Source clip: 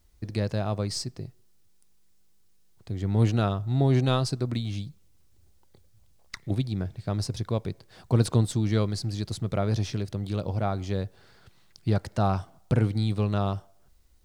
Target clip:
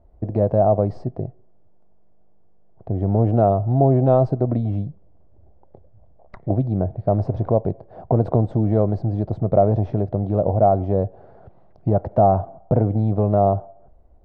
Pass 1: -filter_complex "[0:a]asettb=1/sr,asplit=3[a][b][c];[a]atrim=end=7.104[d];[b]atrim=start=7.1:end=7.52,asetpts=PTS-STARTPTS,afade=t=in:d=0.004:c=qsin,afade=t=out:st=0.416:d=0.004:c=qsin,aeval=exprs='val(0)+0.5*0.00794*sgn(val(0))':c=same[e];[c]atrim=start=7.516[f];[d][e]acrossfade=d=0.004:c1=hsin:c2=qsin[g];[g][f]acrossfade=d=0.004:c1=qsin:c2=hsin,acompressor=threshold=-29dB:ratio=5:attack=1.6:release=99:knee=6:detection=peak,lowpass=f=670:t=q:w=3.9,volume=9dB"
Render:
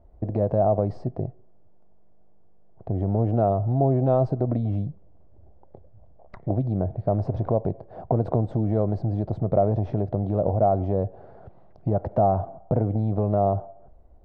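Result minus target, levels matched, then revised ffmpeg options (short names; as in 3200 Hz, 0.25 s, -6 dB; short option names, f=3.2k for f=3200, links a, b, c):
compressor: peak gain reduction +5 dB
-filter_complex "[0:a]asettb=1/sr,asplit=3[a][b][c];[a]atrim=end=7.104[d];[b]atrim=start=7.1:end=7.52,asetpts=PTS-STARTPTS,afade=t=in:d=0.004:c=qsin,afade=t=out:st=0.416:d=0.004:c=qsin,aeval=exprs='val(0)+0.5*0.00794*sgn(val(0))':c=same[e];[c]atrim=start=7.516[f];[d][e]acrossfade=d=0.004:c1=hsin:c2=qsin[g];[g][f]acrossfade=d=0.004:c1=qsin:c2=hsin,acompressor=threshold=-22.5dB:ratio=5:attack=1.6:release=99:knee=6:detection=peak,lowpass=f=670:t=q:w=3.9,volume=9dB"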